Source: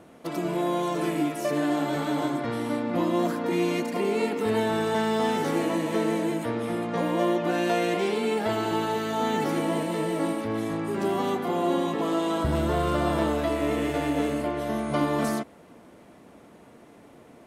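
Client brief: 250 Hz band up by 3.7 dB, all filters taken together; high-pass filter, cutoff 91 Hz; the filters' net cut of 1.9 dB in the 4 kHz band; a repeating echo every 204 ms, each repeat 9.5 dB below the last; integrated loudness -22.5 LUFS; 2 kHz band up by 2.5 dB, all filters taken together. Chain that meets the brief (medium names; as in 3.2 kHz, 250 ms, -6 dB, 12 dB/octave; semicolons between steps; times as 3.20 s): high-pass 91 Hz; peaking EQ 250 Hz +5 dB; peaking EQ 2 kHz +4 dB; peaking EQ 4 kHz -4.5 dB; feedback delay 204 ms, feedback 33%, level -9.5 dB; trim +1.5 dB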